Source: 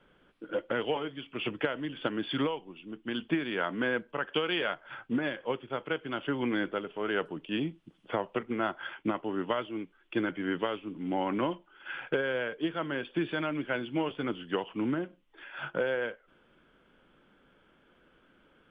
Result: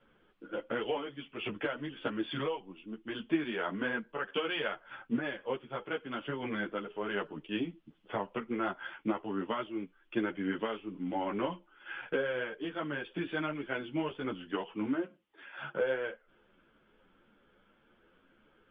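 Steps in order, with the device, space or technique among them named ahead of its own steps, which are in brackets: 14.74–15.82 HPF 96 Hz; string-machine ensemble chorus (ensemble effect; LPF 4100 Hz 12 dB/oct)

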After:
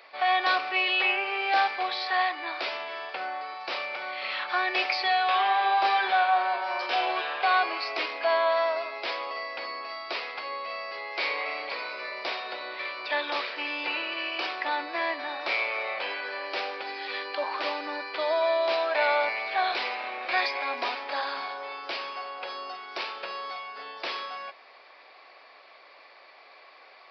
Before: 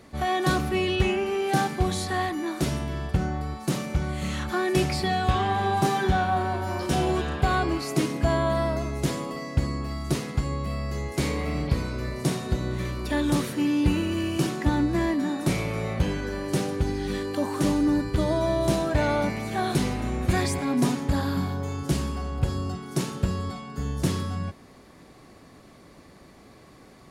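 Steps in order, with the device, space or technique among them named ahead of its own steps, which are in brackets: musical greeting card (downsampling 11025 Hz; HPF 600 Hz 24 dB/oct; bell 2400 Hz +7.5 dB 0.32 oct); gain +3 dB

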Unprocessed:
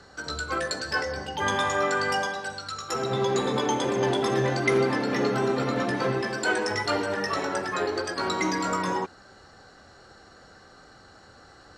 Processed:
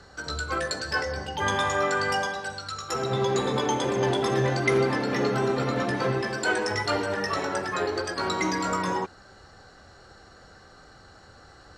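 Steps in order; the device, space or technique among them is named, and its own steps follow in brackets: low shelf boost with a cut just above (low shelf 110 Hz +6.5 dB; bell 250 Hz -2.5 dB 0.77 oct)

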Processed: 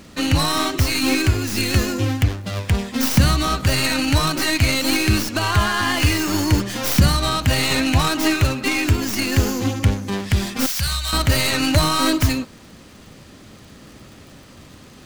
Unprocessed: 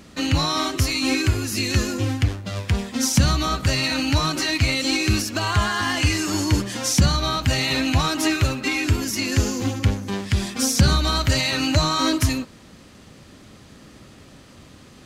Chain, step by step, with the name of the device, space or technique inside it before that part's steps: record under a worn stylus (tracing distortion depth 0.15 ms; crackle; pink noise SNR 38 dB); 10.66–11.13 passive tone stack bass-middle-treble 10-0-10; gain +2.5 dB

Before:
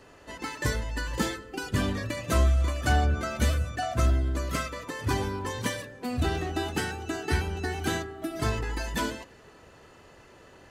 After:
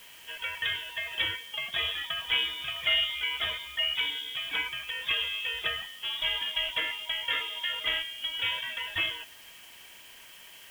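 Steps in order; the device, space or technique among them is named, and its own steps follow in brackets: scrambled radio voice (BPF 350–2800 Hz; inverted band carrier 3600 Hz; white noise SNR 21 dB); gain +2.5 dB

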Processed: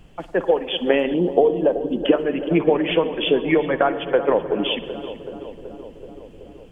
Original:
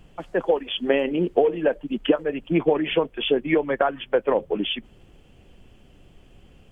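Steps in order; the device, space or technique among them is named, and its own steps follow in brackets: dub delay into a spring reverb (darkening echo 0.378 s, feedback 75%, low-pass 1400 Hz, level -12 dB; spring tank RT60 1.8 s, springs 50 ms, chirp 45 ms, DRR 13 dB); 1.14–2.06 band shelf 1900 Hz -12 dB 1.2 oct; gain +2.5 dB

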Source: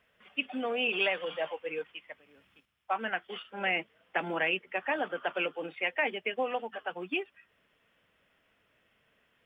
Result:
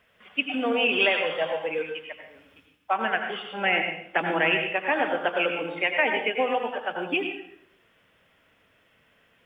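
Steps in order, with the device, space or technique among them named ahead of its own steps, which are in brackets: bathroom (reverb RT60 0.65 s, pre-delay 79 ms, DRR 4 dB); gain +6 dB

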